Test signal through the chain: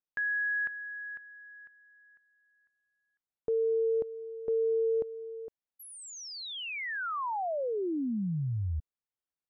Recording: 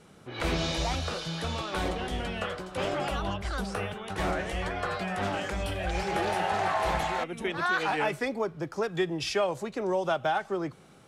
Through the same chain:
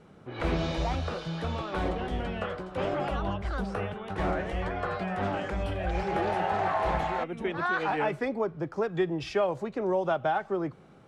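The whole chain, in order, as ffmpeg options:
-af "lowpass=f=1400:p=1,volume=1.19"

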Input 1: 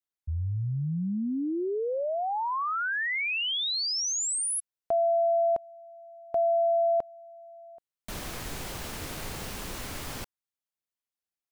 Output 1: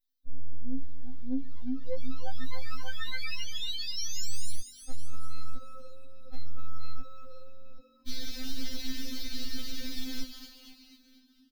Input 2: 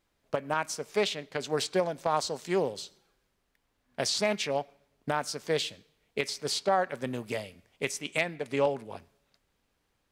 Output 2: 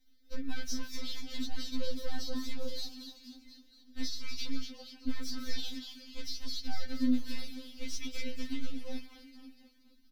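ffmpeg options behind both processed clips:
-filter_complex "[0:a]aeval=exprs='if(lt(val(0),0),0.251*val(0),val(0))':c=same,bandreject=f=480:w=13,aecho=1:1:4.4:0.48,acrossover=split=7800[s0][s1];[s1]acompressor=threshold=0.00158:ratio=4:attack=1:release=60[s2];[s0][s2]amix=inputs=2:normalize=0,firequalizer=gain_entry='entry(180,0);entry(380,10);entry(550,-2);entry(990,-11);entry(1500,-2);entry(4500,15);entry(8000,-3);entry(13000,12)':delay=0.05:min_phase=1,alimiter=limit=0.112:level=0:latency=1:release=151,acompressor=threshold=0.02:ratio=6:attack=24:release=106,asoftclip=type=tanh:threshold=0.0422,bass=f=250:g=11,treble=f=4000:g=1,flanger=delay=6.6:depth=3.7:regen=-17:speed=2:shape=sinusoidal,asplit=2[s3][s4];[s4]asplit=7[s5][s6][s7][s8][s9][s10][s11];[s5]adelay=239,afreqshift=-47,volume=0.473[s12];[s6]adelay=478,afreqshift=-94,volume=0.254[s13];[s7]adelay=717,afreqshift=-141,volume=0.138[s14];[s8]adelay=956,afreqshift=-188,volume=0.0741[s15];[s9]adelay=1195,afreqshift=-235,volume=0.0403[s16];[s10]adelay=1434,afreqshift=-282,volume=0.0216[s17];[s11]adelay=1673,afreqshift=-329,volume=0.0117[s18];[s12][s13][s14][s15][s16][s17][s18]amix=inputs=7:normalize=0[s19];[s3][s19]amix=inputs=2:normalize=0,afftfilt=real='re*3.46*eq(mod(b,12),0)':imag='im*3.46*eq(mod(b,12),0)':win_size=2048:overlap=0.75,volume=1.26"

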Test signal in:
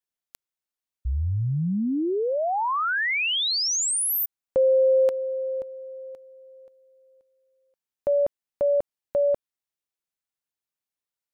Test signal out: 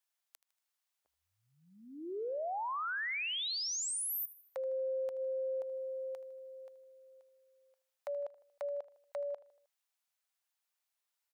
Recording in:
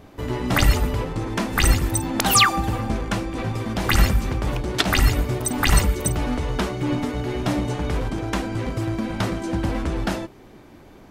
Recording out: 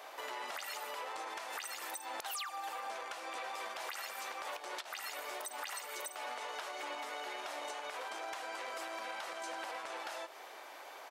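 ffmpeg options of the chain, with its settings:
-af "highpass=f=630:w=0.5412,highpass=f=630:w=1.3066,acompressor=threshold=0.0112:ratio=16:attack=0.29:release=136:knee=6:detection=rms,aecho=1:1:78|156|234|312:0.133|0.0653|0.032|0.0157,volume=1.58"

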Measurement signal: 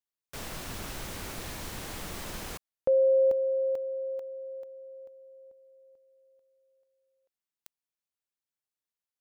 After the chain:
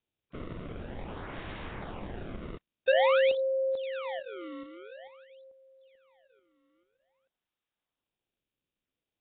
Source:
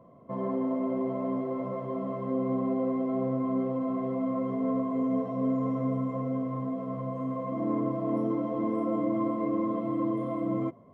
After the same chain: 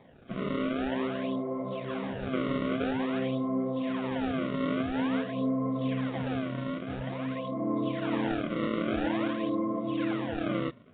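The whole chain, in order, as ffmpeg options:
-af "acrusher=samples=30:mix=1:aa=0.000001:lfo=1:lforange=48:lforate=0.49,volume=0.891" -ar 8000 -c:a nellymoser

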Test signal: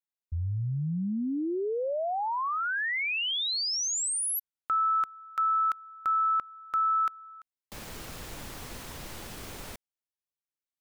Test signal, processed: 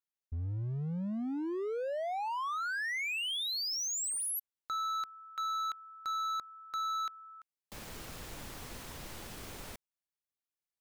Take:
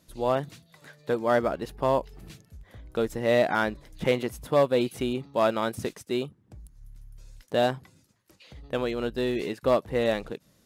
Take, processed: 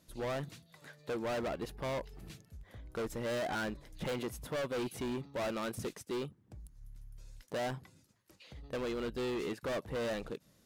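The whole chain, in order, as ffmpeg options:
-af "asoftclip=type=hard:threshold=0.0335,volume=0.631"

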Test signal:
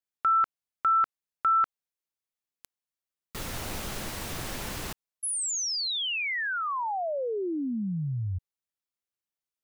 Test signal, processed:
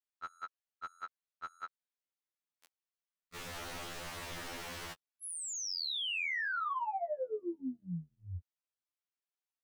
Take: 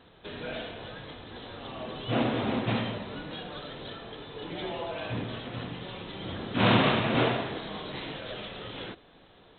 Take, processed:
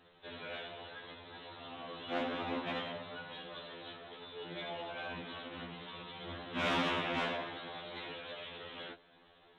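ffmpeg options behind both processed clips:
-filter_complex "[0:a]asoftclip=type=hard:threshold=0.119,asplit=2[s0][s1];[s1]highpass=f=720:p=1,volume=2.24,asoftclip=type=tanh:threshold=0.119[s2];[s0][s2]amix=inputs=2:normalize=0,lowpass=f=3900:p=1,volume=0.501,afftfilt=real='re*2*eq(mod(b,4),0)':imag='im*2*eq(mod(b,4),0)':win_size=2048:overlap=0.75,volume=0.562"

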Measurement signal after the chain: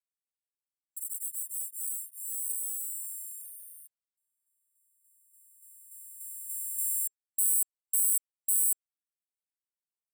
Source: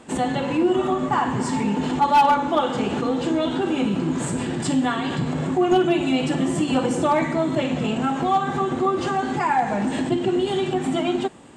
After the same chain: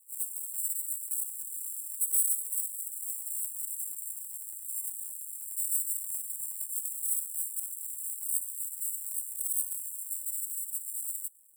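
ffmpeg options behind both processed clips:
-filter_complex "[0:a]acrusher=samples=30:mix=1:aa=0.000001,bass=f=250:g=-13,treble=f=4000:g=0,afftfilt=real='re*(1-between(b*sr/4096,140,7500))':imag='im*(1-between(b*sr/4096,140,7500))':win_size=4096:overlap=0.75,acrossover=split=200|3000[s0][s1][s2];[s1]acompressor=threshold=0.0224:ratio=2[s3];[s0][s3][s2]amix=inputs=3:normalize=0,afftfilt=real='re*gte(b*sr/1024,320*pow(4200/320,0.5+0.5*sin(2*PI*0.51*pts/sr)))':imag='im*gte(b*sr/1024,320*pow(4200/320,0.5+0.5*sin(2*PI*0.51*pts/sr)))':win_size=1024:overlap=0.75,volume=1.5"

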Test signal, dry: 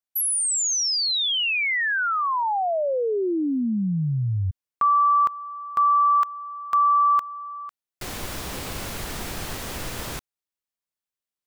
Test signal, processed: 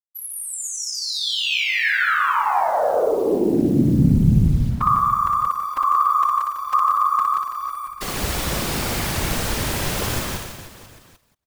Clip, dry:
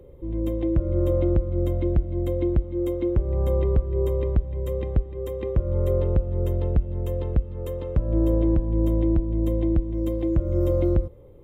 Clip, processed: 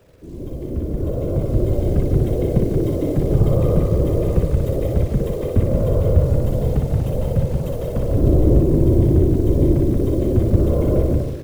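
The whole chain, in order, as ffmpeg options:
-filter_complex "[0:a]asplit=2[s0][s1];[s1]aecho=0:1:179|358|537:0.668|0.127|0.0241[s2];[s0][s2]amix=inputs=2:normalize=0,acrossover=split=180[s3][s4];[s4]acompressor=threshold=0.02:ratio=1.5:attack=3.7:release=30:knee=2.83:detection=peak[s5];[s3][s5]amix=inputs=2:normalize=0,acrusher=bits=9:dc=4:mix=0:aa=0.000001,afftfilt=real='hypot(re,im)*cos(2*PI*random(0))':imag='hypot(re,im)*sin(2*PI*random(1))':win_size=512:overlap=0.75,asplit=2[s6][s7];[s7]aecho=0:1:60|150|285|487.5|791.2:0.631|0.398|0.251|0.158|0.1[s8];[s6][s8]amix=inputs=2:normalize=0,dynaudnorm=f=320:g=9:m=3.98"

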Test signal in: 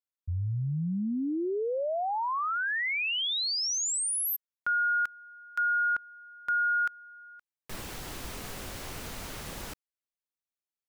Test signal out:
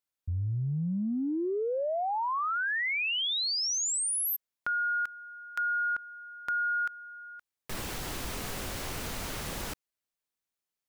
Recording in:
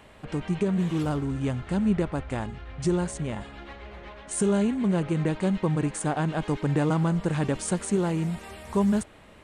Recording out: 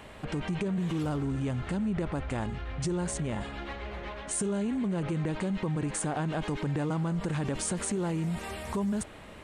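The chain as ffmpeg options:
-af "acompressor=threshold=0.0224:ratio=5:attack=4.5:release=33:knee=6,volume=1.58"

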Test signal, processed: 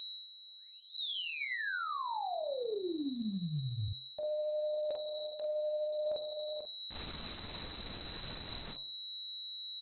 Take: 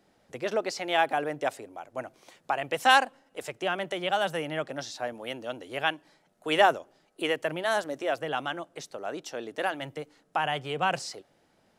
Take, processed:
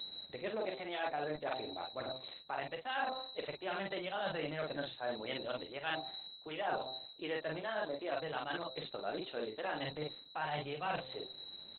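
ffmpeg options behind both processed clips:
-af "aecho=1:1:14|46:0.188|0.596,aeval=exprs='val(0)+0.0158*sin(2*PI*4100*n/s)':c=same,bandreject=f=130:t=h:w=4,bandreject=f=260:t=h:w=4,bandreject=f=390:t=h:w=4,bandreject=f=520:t=h:w=4,bandreject=f=650:t=h:w=4,bandreject=f=780:t=h:w=4,bandreject=f=910:t=h:w=4,bandreject=f=1040:t=h:w=4,bandreject=f=1170:t=h:w=4,bandreject=f=1300:t=h:w=4,areverse,acompressor=threshold=0.0141:ratio=10,areverse,volume=1.5" -ar 48000 -c:a libopus -b:a 8k

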